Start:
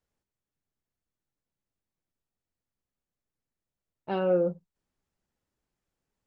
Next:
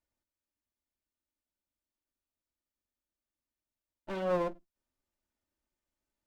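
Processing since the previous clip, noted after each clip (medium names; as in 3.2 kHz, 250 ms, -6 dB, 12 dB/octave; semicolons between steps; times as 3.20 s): comb filter that takes the minimum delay 3.3 ms; trim -3.5 dB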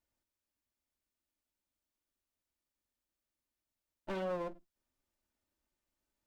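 compression 6:1, threshold -35 dBFS, peak gain reduction 10 dB; trim +1 dB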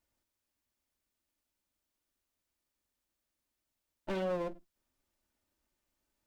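dynamic bell 1.1 kHz, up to -4 dB, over -50 dBFS, Q 1.1; trim +4 dB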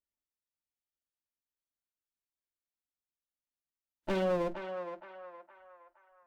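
spectral noise reduction 21 dB; band-passed feedback delay 467 ms, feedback 49%, band-pass 1.2 kHz, level -5 dB; trim +4 dB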